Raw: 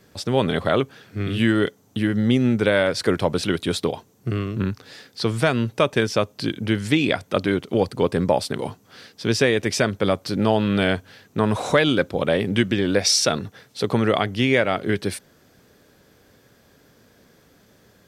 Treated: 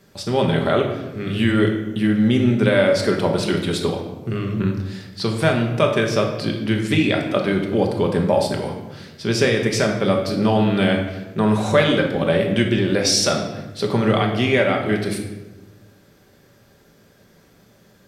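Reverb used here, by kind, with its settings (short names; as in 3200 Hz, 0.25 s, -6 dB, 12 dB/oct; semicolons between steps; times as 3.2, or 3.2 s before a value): shoebox room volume 570 m³, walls mixed, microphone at 1.2 m; gain -1 dB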